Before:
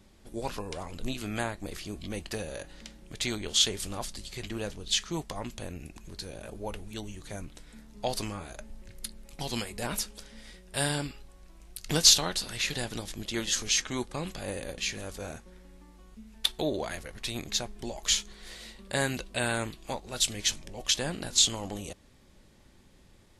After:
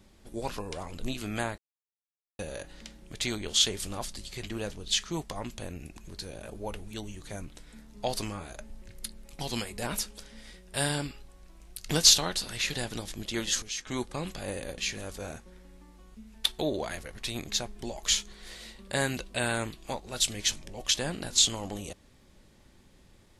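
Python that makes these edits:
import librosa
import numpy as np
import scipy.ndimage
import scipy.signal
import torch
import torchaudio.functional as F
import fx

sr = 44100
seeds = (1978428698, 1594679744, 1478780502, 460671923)

y = fx.edit(x, sr, fx.silence(start_s=1.58, length_s=0.81),
    fx.clip_gain(start_s=13.62, length_s=0.25, db=-9.5), tone=tone)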